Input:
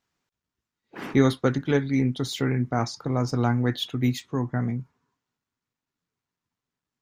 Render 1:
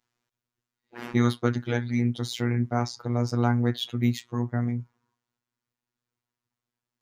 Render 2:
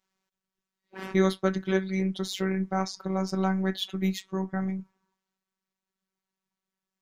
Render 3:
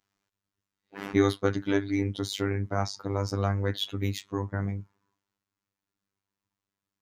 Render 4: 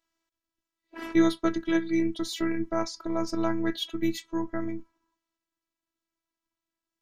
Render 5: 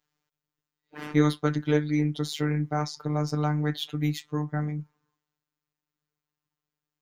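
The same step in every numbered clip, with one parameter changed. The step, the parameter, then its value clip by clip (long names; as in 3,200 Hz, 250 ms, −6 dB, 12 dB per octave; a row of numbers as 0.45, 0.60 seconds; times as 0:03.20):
phases set to zero, frequency: 120, 190, 99, 330, 150 Hertz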